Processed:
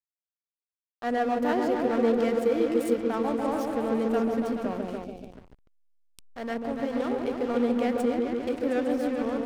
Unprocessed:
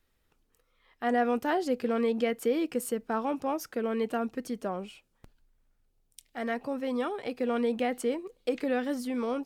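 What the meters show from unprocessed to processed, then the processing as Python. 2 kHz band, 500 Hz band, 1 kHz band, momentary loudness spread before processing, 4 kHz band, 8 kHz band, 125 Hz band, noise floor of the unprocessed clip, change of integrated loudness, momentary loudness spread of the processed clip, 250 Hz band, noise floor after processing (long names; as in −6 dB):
+0.5 dB, +4.0 dB, +2.0 dB, 7 LU, 0.0 dB, −4.0 dB, +6.0 dB, −73 dBFS, +3.5 dB, 9 LU, +4.5 dB, below −85 dBFS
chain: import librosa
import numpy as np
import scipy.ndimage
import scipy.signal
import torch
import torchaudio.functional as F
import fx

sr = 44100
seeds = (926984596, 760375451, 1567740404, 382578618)

y = fx.echo_opening(x, sr, ms=143, hz=750, octaves=1, feedback_pct=70, wet_db=0)
y = fx.backlash(y, sr, play_db=-31.5)
y = fx.spec_box(y, sr, start_s=5.04, length_s=0.28, low_hz=850.0, high_hz=2200.0, gain_db=-13)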